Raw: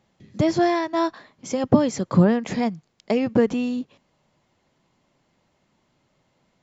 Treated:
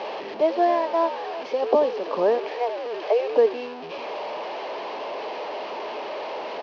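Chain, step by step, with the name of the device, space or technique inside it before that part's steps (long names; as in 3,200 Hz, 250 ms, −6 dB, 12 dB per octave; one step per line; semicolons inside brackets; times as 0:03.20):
0:02.38–0:03.37: Butterworth high-pass 410 Hz 72 dB per octave
echo with shifted repeats 85 ms, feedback 39%, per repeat −83 Hz, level −11.5 dB
digital answering machine (band-pass filter 380–3,300 Hz; linear delta modulator 32 kbit/s, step −26.5 dBFS; loudspeaker in its box 420–4,000 Hz, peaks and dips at 430 Hz +9 dB, 620 Hz +5 dB, 890 Hz +4 dB, 1,400 Hz −8 dB, 2,000 Hz −7 dB, 3,600 Hz −7 dB)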